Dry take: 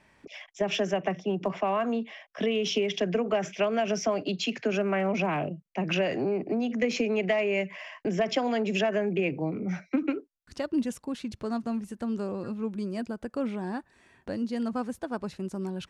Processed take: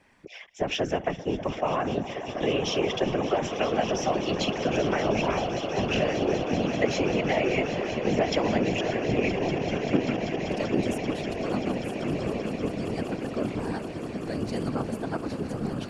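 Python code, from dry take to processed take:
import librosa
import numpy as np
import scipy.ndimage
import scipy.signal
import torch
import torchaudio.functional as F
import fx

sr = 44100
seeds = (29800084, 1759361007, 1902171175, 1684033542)

p1 = fx.over_compress(x, sr, threshold_db=-30.0, ratio=-1.0, at=(8.74, 9.15))
p2 = fx.high_shelf(p1, sr, hz=5100.0, db=10.5, at=(13.59, 14.75))
p3 = p2 + fx.echo_swell(p2, sr, ms=194, loudest=8, wet_db=-13.5, dry=0)
y = fx.whisperise(p3, sr, seeds[0])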